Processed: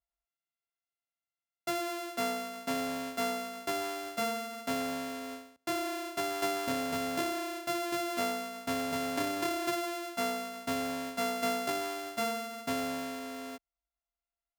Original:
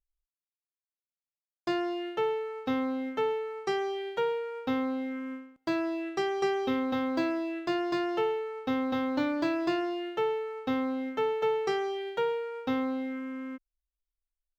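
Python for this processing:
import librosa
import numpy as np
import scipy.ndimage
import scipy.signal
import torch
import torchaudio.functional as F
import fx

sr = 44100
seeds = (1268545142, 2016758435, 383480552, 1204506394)

y = np.r_[np.sort(x[:len(x) // 64 * 64].reshape(-1, 64), axis=1).ravel(), x[len(x) // 64 * 64:]]
y = scipy.signal.sosfilt(scipy.signal.butter(2, 50.0, 'highpass', fs=sr, output='sos'), y)
y = fx.peak_eq(y, sr, hz=71.0, db=3.0, octaves=1.2)
y = F.gain(torch.from_numpy(y), -4.0).numpy()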